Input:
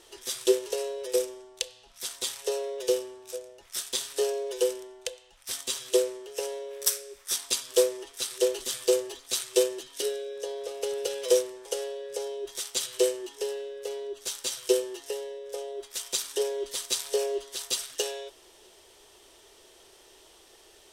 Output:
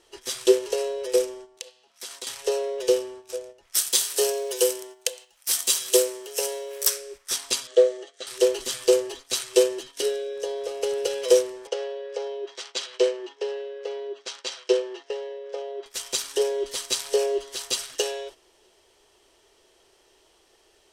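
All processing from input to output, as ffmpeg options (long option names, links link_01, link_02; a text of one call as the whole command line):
ffmpeg -i in.wav -filter_complex "[0:a]asettb=1/sr,asplit=3[link_01][link_02][link_03];[link_01]atrim=end=1.574[link_04];[link_02]atrim=start=1.57:end=2.27,asetpts=PTS-STARTPTS,afade=type=in:duration=0.004:curve=qsin,afade=type=out:start_time=0.696:duration=0.004:curve=qsin,highpass=240,acompressor=threshold=-35dB:ratio=5:attack=3.2:release=140:knee=1:detection=peak[link_05];[link_03]atrim=start=2.266[link_06];[link_04][link_05]acrossfade=duration=0.004:curve1=hsin:curve2=qsin[link_07];[link_07][link_06]acrossfade=duration=0.004:curve1=qsin:curve2=hsin,asettb=1/sr,asplit=3[link_08][link_09][link_10];[link_08]atrim=end=3.754[link_11];[link_09]atrim=start=3.75:end=6.87,asetpts=PTS-STARTPTS,afade=type=in:duration=0.004:curve=qsin,afade=type=out:start_time=3.116:duration=0.004:curve=qsin,aemphasis=mode=production:type=bsi,acrusher=bits=6:mode=log:mix=0:aa=0.000001[link_12];[link_10]atrim=start=6.866[link_13];[link_11][link_12]acrossfade=duration=0.004:curve1=hsin:curve2=qsin[link_14];[link_14][link_13]acrossfade=duration=0.004:curve1=qsin:curve2=hsin,asettb=1/sr,asplit=3[link_15][link_16][link_17];[link_15]atrim=end=7.674[link_18];[link_16]atrim=start=7.67:end=8.27,asetpts=PTS-STARTPTS,afade=type=in:duration=0.004:curve=qsin,afade=type=out:start_time=0.596:duration=0.004:curve=qsin,acrossover=split=3300[link_19][link_20];[link_20]acompressor=threshold=-38dB:ratio=4:attack=1:release=60[link_21];[link_19][link_21]amix=inputs=2:normalize=0,asuperstop=centerf=1000:order=4:qfactor=5,highpass=440,equalizer=frequency=570:width_type=q:width=4:gain=7,equalizer=frequency=850:width_type=q:width=4:gain=-5,equalizer=frequency=1400:width_type=q:width=4:gain=-6,equalizer=frequency=2500:width_type=q:width=4:gain=-9,equalizer=frequency=5200:width_type=q:width=4:gain=-9,lowpass=frequency=7200:width=0.5412,lowpass=frequency=7200:width=1.3066[link_22];[link_17]atrim=start=8.266[link_23];[link_18][link_22]acrossfade=duration=0.004:curve1=hsin:curve2=qsin[link_24];[link_24][link_23]acrossfade=duration=0.004:curve1=qsin:curve2=hsin,asettb=1/sr,asplit=3[link_25][link_26][link_27];[link_25]atrim=end=11.674[link_28];[link_26]atrim=start=11.67:end=15.86,asetpts=PTS-STARTPTS,afade=type=in:duration=0.004:curve=qsin,afade=type=out:start_time=4.186:duration=0.004:curve=qsin,adynamicsmooth=sensitivity=4.5:basefreq=4500,highpass=390,lowpass=6100[link_29];[link_27]atrim=start=15.856[link_30];[link_28][link_29]acrossfade=duration=0.004:curve1=hsin:curve2=qsin[link_31];[link_31][link_30]acrossfade=duration=0.004:curve1=qsin:curve2=hsin,agate=range=-9dB:threshold=-46dB:ratio=16:detection=peak,highshelf=frequency=9000:gain=-8.5,bandreject=frequency=3600:width=16,volume=5dB" out.wav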